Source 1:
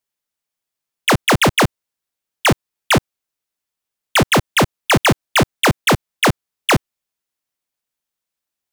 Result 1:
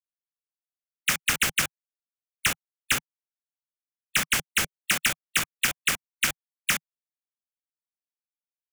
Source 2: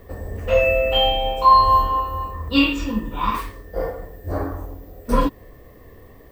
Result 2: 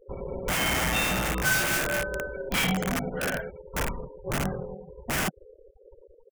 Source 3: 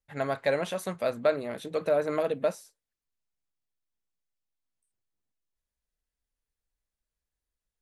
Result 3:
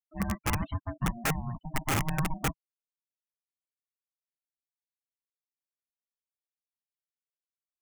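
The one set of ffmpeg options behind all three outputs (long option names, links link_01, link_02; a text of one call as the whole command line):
ffmpeg -i in.wav -filter_complex "[0:a]aeval=exprs='val(0)*sin(2*PI*470*n/s)':channel_layout=same,afftfilt=real='re*gte(hypot(re,im),0.02)':imag='im*gte(hypot(re,im),0.02)':win_size=1024:overlap=0.75,bass=frequency=250:gain=7,treble=frequency=4000:gain=2,acrossover=split=1500[link_01][link_02];[link_01]aeval=exprs='(mod(8.41*val(0)+1,2)-1)/8.41':channel_layout=same[link_03];[link_03][link_02]amix=inputs=2:normalize=0,equalizer=frequency=160:width_type=o:width=0.67:gain=4,equalizer=frequency=400:width_type=o:width=0.67:gain=-3,equalizer=frequency=1000:width_type=o:width=0.67:gain=-5,equalizer=frequency=4000:width_type=o:width=0.67:gain=-10,volume=-1.5dB" out.wav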